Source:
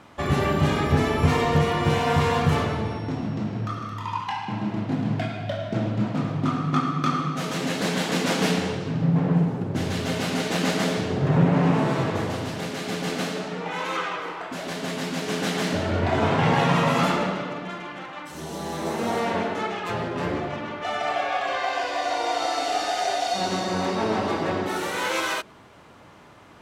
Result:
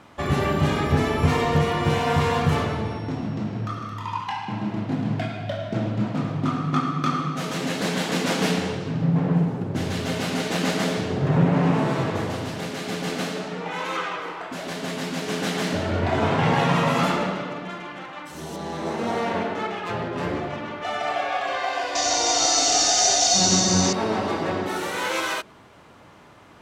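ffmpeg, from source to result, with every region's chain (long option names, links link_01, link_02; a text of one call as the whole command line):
ffmpeg -i in.wav -filter_complex "[0:a]asettb=1/sr,asplit=3[link_01][link_02][link_03];[link_01]atrim=end=18.564[link_04];[link_02]atrim=start=18.56:end=20.13,asetpts=PTS-STARTPTS,afade=type=in:duration=0.004:curve=qsin,afade=type=out:start_time=1.566:duration=0.004:curve=qsin,highpass=48,adynamicsmooth=sensitivity=6:basefreq=5100[link_05];[link_03]atrim=start=20.126[link_06];[link_04][link_05]acrossfade=duration=0.004:curve1=hsin:curve2=qsin[link_07];[link_07][link_06]acrossfade=duration=0.004:curve1=qsin:curve2=hsin,asettb=1/sr,asplit=3[link_08][link_09][link_10];[link_08]atrim=end=21.954[link_11];[link_09]atrim=start=21.95:end=23.93,asetpts=PTS-STARTPTS,afade=type=in:duration=0.004:curve=qsin,afade=type=out:start_time=1.976:duration=0.004:curve=qsin,lowpass=frequency=6300:width_type=q:width=4.3,bass=frequency=250:gain=11,treble=frequency=4000:gain=11[link_12];[link_10]atrim=start=23.926[link_13];[link_11][link_12]acrossfade=duration=0.004:curve1=hsin:curve2=qsin[link_14];[link_14][link_13]acrossfade=duration=0.004:curve1=qsin:curve2=hsin" out.wav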